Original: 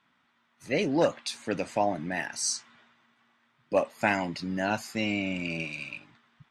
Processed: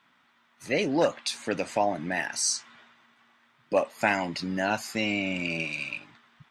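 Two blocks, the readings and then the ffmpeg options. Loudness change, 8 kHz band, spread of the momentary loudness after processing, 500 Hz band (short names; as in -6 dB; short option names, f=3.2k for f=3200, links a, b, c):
+1.5 dB, +3.0 dB, 7 LU, +1.0 dB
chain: -filter_complex "[0:a]lowshelf=f=280:g=-5.5,asplit=2[a][b];[b]acompressor=threshold=-34dB:ratio=6,volume=-1dB[c];[a][c]amix=inputs=2:normalize=0"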